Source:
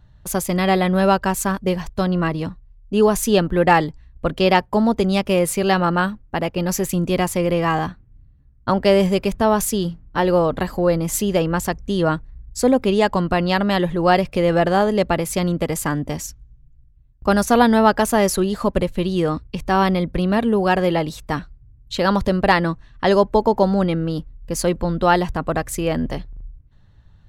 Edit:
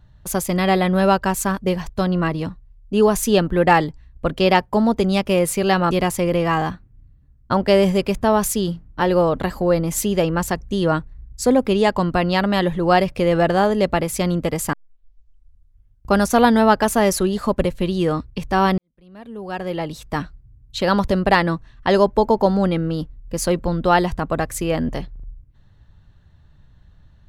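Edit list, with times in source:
0:05.91–0:07.08: remove
0:15.90: tape start 1.39 s
0:19.95–0:21.36: fade in quadratic

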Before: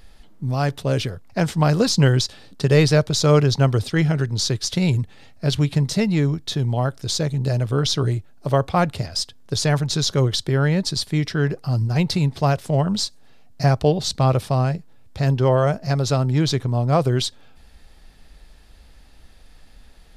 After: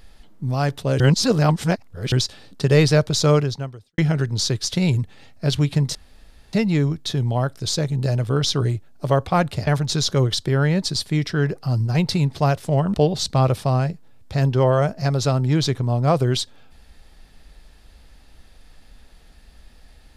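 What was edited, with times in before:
0:01.00–0:02.12: reverse
0:03.28–0:03.98: fade out quadratic
0:05.95: splice in room tone 0.58 s
0:09.09–0:09.68: remove
0:12.95–0:13.79: remove

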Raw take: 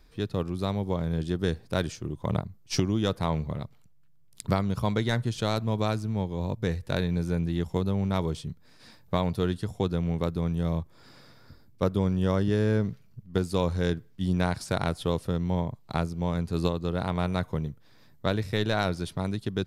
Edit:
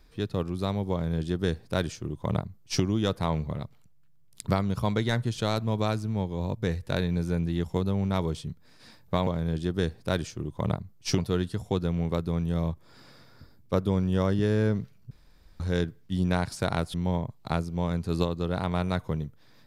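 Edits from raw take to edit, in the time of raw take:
0:00.92–0:02.83: duplicate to 0:09.27
0:13.20–0:13.69: fill with room tone
0:15.03–0:15.38: remove

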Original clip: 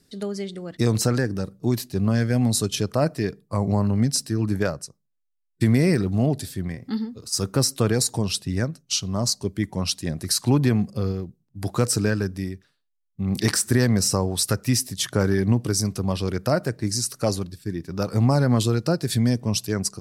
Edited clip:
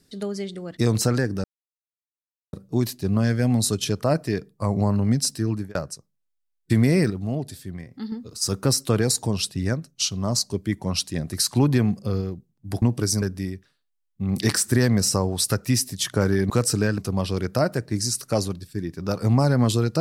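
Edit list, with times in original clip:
0:01.44: splice in silence 1.09 s
0:04.38–0:04.66: fade out
0:06.01–0:07.03: clip gain −6 dB
0:11.73–0:12.21: swap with 0:15.49–0:15.89

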